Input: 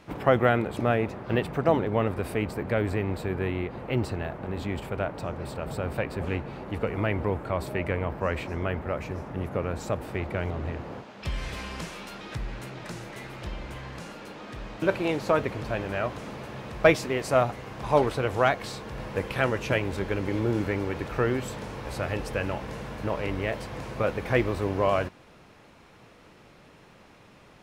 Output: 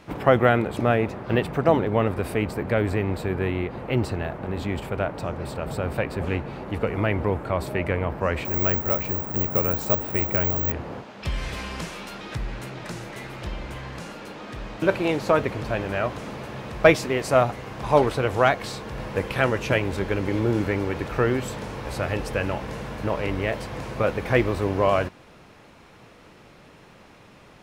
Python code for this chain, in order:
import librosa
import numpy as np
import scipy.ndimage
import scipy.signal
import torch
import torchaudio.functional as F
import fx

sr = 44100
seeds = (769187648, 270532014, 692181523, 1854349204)

y = fx.resample_bad(x, sr, factor=2, down='filtered', up='zero_stuff', at=(8.45, 10.72))
y = y * librosa.db_to_amplitude(3.5)